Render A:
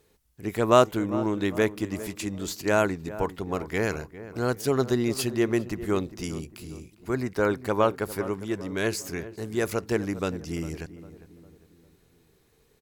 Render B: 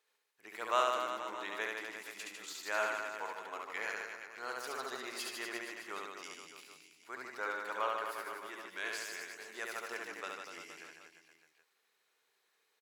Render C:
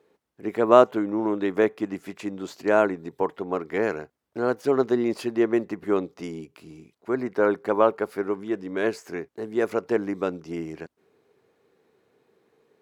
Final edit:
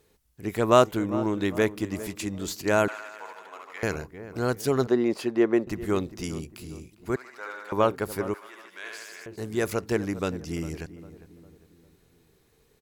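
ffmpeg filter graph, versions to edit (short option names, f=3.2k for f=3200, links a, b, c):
-filter_complex "[1:a]asplit=3[a][b][c];[0:a]asplit=5[d][e][f][g][h];[d]atrim=end=2.882[i];[a]atrim=start=2.878:end=3.832[j];[e]atrim=start=3.828:end=4.872[k];[2:a]atrim=start=4.868:end=5.672[l];[f]atrim=start=5.668:end=7.162[m];[b]atrim=start=7.158:end=7.722[n];[g]atrim=start=7.718:end=8.342[o];[c]atrim=start=8.338:end=9.262[p];[h]atrim=start=9.258[q];[i][j]acrossfade=d=0.004:c1=hsin:c2=hsin[r];[r][k]acrossfade=d=0.004:c1=hsin:c2=hsin[s];[s][l]acrossfade=d=0.004:c1=hsin:c2=hsin[t];[t][m]acrossfade=d=0.004:c1=hsin:c2=hsin[u];[u][n]acrossfade=d=0.004:c1=hsin:c2=hsin[v];[v][o]acrossfade=d=0.004:c1=hsin:c2=hsin[w];[w][p]acrossfade=d=0.004:c1=hsin:c2=hsin[x];[x][q]acrossfade=d=0.004:c1=hsin:c2=hsin"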